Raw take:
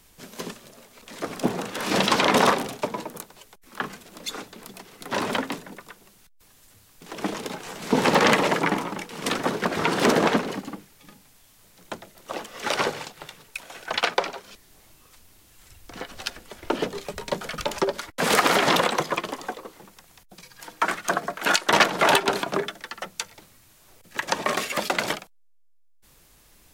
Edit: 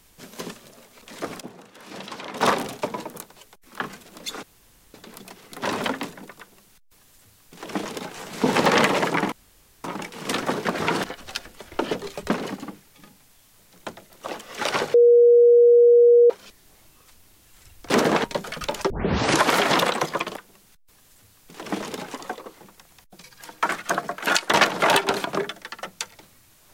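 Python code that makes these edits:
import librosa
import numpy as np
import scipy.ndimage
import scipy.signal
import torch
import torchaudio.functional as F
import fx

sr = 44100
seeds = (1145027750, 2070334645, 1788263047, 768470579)

y = fx.edit(x, sr, fx.fade_down_up(start_s=1.28, length_s=1.26, db=-16.0, fade_s=0.13, curve='log'),
    fx.insert_room_tone(at_s=4.43, length_s=0.51),
    fx.duplicate(start_s=5.88, length_s=1.78, to_s=19.33),
    fx.insert_room_tone(at_s=8.81, length_s=0.52),
    fx.swap(start_s=10.01, length_s=0.34, other_s=15.95, other_length_s=1.26),
    fx.bleep(start_s=12.99, length_s=1.36, hz=477.0, db=-10.0),
    fx.tape_start(start_s=17.87, length_s=0.63), tone=tone)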